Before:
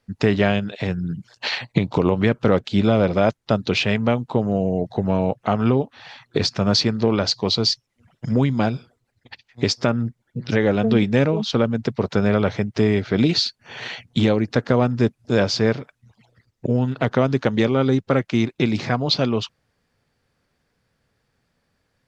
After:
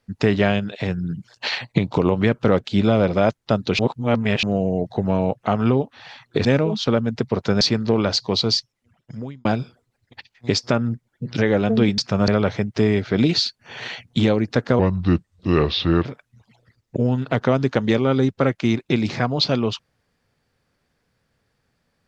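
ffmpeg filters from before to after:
ffmpeg -i in.wav -filter_complex "[0:a]asplit=10[link_01][link_02][link_03][link_04][link_05][link_06][link_07][link_08][link_09][link_10];[link_01]atrim=end=3.792[link_11];[link_02]atrim=start=3.788:end=4.432,asetpts=PTS-STARTPTS,areverse[link_12];[link_03]atrim=start=4.428:end=6.452[link_13];[link_04]atrim=start=11.118:end=12.282[link_14];[link_05]atrim=start=6.748:end=8.59,asetpts=PTS-STARTPTS,afade=type=out:start_time=0.892:duration=0.95[link_15];[link_06]atrim=start=8.59:end=11.122,asetpts=PTS-STARTPTS,afade=type=in:duration=0.004:curve=hsin[link_16];[link_07]atrim=start=6.448:end=6.752[link_17];[link_08]atrim=start=12.278:end=14.794[link_18];[link_09]atrim=start=14.79:end=15.75,asetpts=PTS-STARTPTS,asetrate=33516,aresample=44100,atrim=end_sample=55705,asetpts=PTS-STARTPTS[link_19];[link_10]atrim=start=15.746[link_20];[link_11][link_12]acrossfade=duration=0.004:curve1=hsin:curve2=hsin[link_21];[link_21][link_13]acrossfade=duration=0.004:curve1=hsin:curve2=hsin[link_22];[link_22][link_14]acrossfade=duration=0.004:curve1=hsin:curve2=hsin[link_23];[link_15][link_16]concat=n=2:v=0:a=1[link_24];[link_23][link_24]acrossfade=duration=0.004:curve1=hsin:curve2=hsin[link_25];[link_25][link_17]acrossfade=duration=0.004:curve1=hsin:curve2=hsin[link_26];[link_26][link_18]acrossfade=duration=0.004:curve1=hsin:curve2=hsin[link_27];[link_27][link_19]acrossfade=duration=0.004:curve1=hsin:curve2=hsin[link_28];[link_28][link_20]acrossfade=duration=0.004:curve1=hsin:curve2=hsin" out.wav

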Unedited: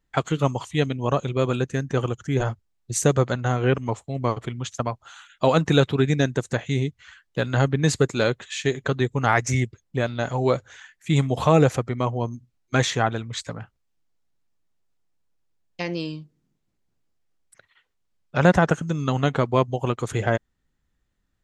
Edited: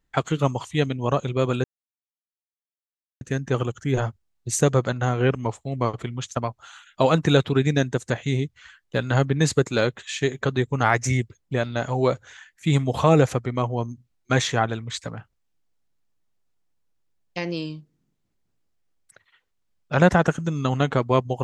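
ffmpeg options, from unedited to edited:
ffmpeg -i in.wav -filter_complex "[0:a]asplit=2[link_01][link_02];[link_01]atrim=end=1.64,asetpts=PTS-STARTPTS,afade=type=out:start_time=1.636:duration=0.004:curve=hsin,apad=pad_dur=1.57[link_03];[link_02]atrim=start=1.64,asetpts=PTS-STARTPTS,afade=type=in:duration=0.004:curve=hsin[link_04];[link_03][link_04]concat=n=2:v=0:a=1" out.wav

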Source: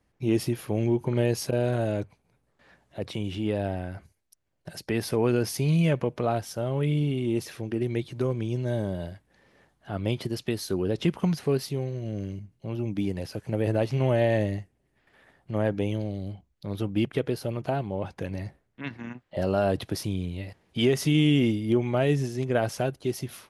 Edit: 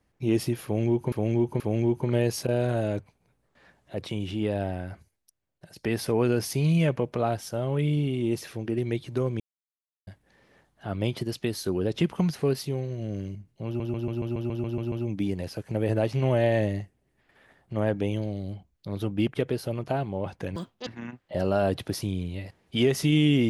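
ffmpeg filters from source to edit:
ffmpeg -i in.wav -filter_complex "[0:a]asplit=17[link_01][link_02][link_03][link_04][link_05][link_06][link_07][link_08][link_09][link_10][link_11][link_12][link_13][link_14][link_15][link_16][link_17];[link_01]atrim=end=1.122[link_18];[link_02]atrim=start=0.638:end=1.122[link_19];[link_03]atrim=start=0.638:end=4.8,asetpts=PTS-STARTPTS,afade=type=out:start_time=3.312:duration=0.85:silence=0.281838[link_20];[link_04]atrim=start=4.8:end=8.44,asetpts=PTS-STARTPTS,afade=type=in:duration=0.004:curve=hsin:silence=0.281838,afade=type=out:start_time=3.636:duration=0.004:curve=hsin[link_21];[link_05]atrim=start=8.44:end=9.11,asetpts=PTS-STARTPTS,volume=0[link_22];[link_06]atrim=start=9.11:end=12.842,asetpts=PTS-STARTPTS,afade=type=in:duration=0.004:curve=hsin[link_23];[link_07]atrim=start=12.698:end=12.842[link_24];[link_08]atrim=start=12.698:end=12.842[link_25];[link_09]atrim=start=12.698:end=12.842[link_26];[link_10]atrim=start=12.698:end=12.842[link_27];[link_11]atrim=start=12.698:end=12.842[link_28];[link_12]atrim=start=12.698:end=12.842[link_29];[link_13]atrim=start=12.698:end=12.842[link_30];[link_14]atrim=start=12.698:end=12.842[link_31];[link_15]atrim=start=12.698:end=18.344[link_32];[link_16]atrim=start=18.34:end=18.89,asetpts=PTS-STARTPTS,asetrate=78939,aresample=44100,atrim=end_sample=13550,asetpts=PTS-STARTPTS[link_33];[link_17]atrim=start=18.886[link_34];[link_18][link_19]acrossfade=duration=0.004:curve1=hsin:curve2=hsin[link_35];[link_20][link_21][link_22][link_23]concat=n=4:v=0:a=1[link_36];[link_35][link_36]acrossfade=duration=0.004:curve1=hsin:curve2=hsin[link_37];[link_37][link_24]acrossfade=duration=0.004:curve1=hsin:curve2=hsin[link_38];[link_38][link_25]acrossfade=duration=0.004:curve1=hsin:curve2=hsin[link_39];[link_39][link_26]acrossfade=duration=0.004:curve1=hsin:curve2=hsin[link_40];[link_40][link_27]acrossfade=duration=0.004:curve1=hsin:curve2=hsin[link_41];[link_41][link_28]acrossfade=duration=0.004:curve1=hsin:curve2=hsin[link_42];[link_42][link_29]acrossfade=duration=0.004:curve1=hsin:curve2=hsin[link_43];[link_43][link_30]acrossfade=duration=0.004:curve1=hsin:curve2=hsin[link_44];[link_44][link_31]acrossfade=duration=0.004:curve1=hsin:curve2=hsin[link_45];[link_45][link_32]acrossfade=duration=0.004:curve1=hsin:curve2=hsin[link_46];[link_46][link_33]acrossfade=duration=0.004:curve1=hsin:curve2=hsin[link_47];[link_47][link_34]acrossfade=duration=0.004:curve1=hsin:curve2=hsin" out.wav

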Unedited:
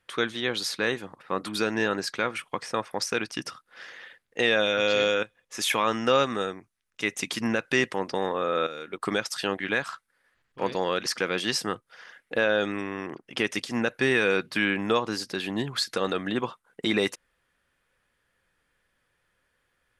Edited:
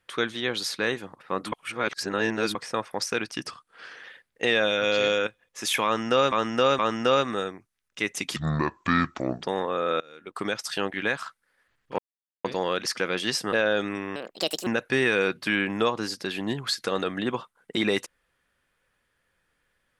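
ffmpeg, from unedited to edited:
ffmpeg -i in.wav -filter_complex "[0:a]asplit=14[link_01][link_02][link_03][link_04][link_05][link_06][link_07][link_08][link_09][link_10][link_11][link_12][link_13][link_14];[link_01]atrim=end=1.522[link_15];[link_02]atrim=start=1.518:end=2.552,asetpts=PTS-STARTPTS,areverse[link_16];[link_03]atrim=start=2.548:end=3.474[link_17];[link_04]atrim=start=3.47:end=4,asetpts=PTS-STARTPTS,asetrate=41013,aresample=44100,atrim=end_sample=25132,asetpts=PTS-STARTPTS[link_18];[link_05]atrim=start=3.996:end=6.282[link_19];[link_06]atrim=start=5.808:end=6.282[link_20];[link_07]atrim=start=5.808:end=7.384[link_21];[link_08]atrim=start=7.38:end=8.1,asetpts=PTS-STARTPTS,asetrate=29547,aresample=44100,atrim=end_sample=47391,asetpts=PTS-STARTPTS[link_22];[link_09]atrim=start=8.096:end=8.67,asetpts=PTS-STARTPTS,afade=type=out:start_time=0.57:duration=0.004:curve=hsin:silence=0.177828[link_23];[link_10]atrim=start=8.67:end=10.65,asetpts=PTS-STARTPTS,afade=type=in:duration=0.89:curve=qsin:silence=0.177828,afade=type=out:start_time=1.976:duration=0.004:curve=hsin,apad=pad_dur=0.46[link_24];[link_11]atrim=start=10.65:end=11.732,asetpts=PTS-STARTPTS,afade=type=in:duration=0.004:curve=hsin[link_25];[link_12]atrim=start=12.358:end=12.994[link_26];[link_13]atrim=start=12.99:end=13.76,asetpts=PTS-STARTPTS,asetrate=66150,aresample=44100[link_27];[link_14]atrim=start=13.756[link_28];[link_15][link_16]acrossfade=duration=0.004:curve1=hsin:curve2=hsin[link_29];[link_29][link_17]acrossfade=duration=0.004:curve1=hsin:curve2=hsin[link_30];[link_30][link_18]acrossfade=duration=0.004:curve1=hsin:curve2=hsin[link_31];[link_31][link_19]acrossfade=duration=0.004:curve1=hsin:curve2=hsin[link_32];[link_32][link_20]acrossfade=duration=0.004:curve1=hsin:curve2=hsin[link_33];[link_33][link_21]acrossfade=duration=0.004:curve1=hsin:curve2=hsin[link_34];[link_34][link_22]acrossfade=duration=0.004:curve1=hsin:curve2=hsin[link_35];[link_23][link_24][link_25]concat=n=3:v=0:a=1[link_36];[link_35][link_36]acrossfade=duration=0.004:curve1=hsin:curve2=hsin[link_37];[link_37][link_26]acrossfade=duration=0.004:curve1=hsin:curve2=hsin[link_38];[link_38][link_27]acrossfade=duration=0.004:curve1=hsin:curve2=hsin[link_39];[link_39][link_28]acrossfade=duration=0.004:curve1=hsin:curve2=hsin" out.wav

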